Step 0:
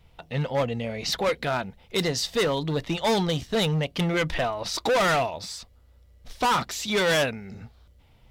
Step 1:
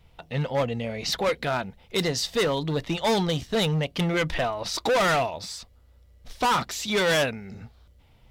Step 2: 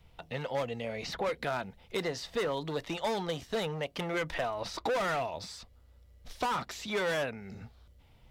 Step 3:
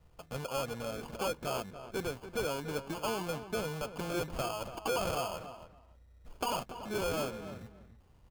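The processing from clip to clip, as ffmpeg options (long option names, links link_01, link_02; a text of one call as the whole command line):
ffmpeg -i in.wav -af anull out.wav
ffmpeg -i in.wav -filter_complex "[0:a]acrossover=split=360|2300|5000[link_01][link_02][link_03][link_04];[link_01]acompressor=threshold=-39dB:ratio=4[link_05];[link_02]acompressor=threshold=-27dB:ratio=4[link_06];[link_03]acompressor=threshold=-45dB:ratio=4[link_07];[link_04]acompressor=threshold=-48dB:ratio=4[link_08];[link_05][link_06][link_07][link_08]amix=inputs=4:normalize=0,volume=-3dB" out.wav
ffmpeg -i in.wav -filter_complex "[0:a]lowpass=frequency=3200:width=0.5412,lowpass=frequency=3200:width=1.3066,acrusher=samples=23:mix=1:aa=0.000001,asplit=2[link_01][link_02];[link_02]adelay=286,lowpass=frequency=2300:poles=1,volume=-11dB,asplit=2[link_03][link_04];[link_04]adelay=286,lowpass=frequency=2300:poles=1,volume=0.18[link_05];[link_01][link_03][link_05]amix=inputs=3:normalize=0,volume=-2.5dB" out.wav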